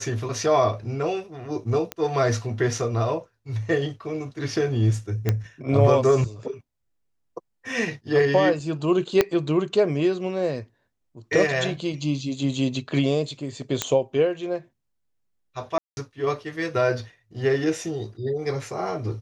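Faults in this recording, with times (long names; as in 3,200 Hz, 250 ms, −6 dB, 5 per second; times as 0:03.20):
0:01.92: click −13 dBFS
0:05.29: click −9 dBFS
0:09.21: click −4 dBFS
0:13.82: click −6 dBFS
0:15.78–0:15.97: drop-out 191 ms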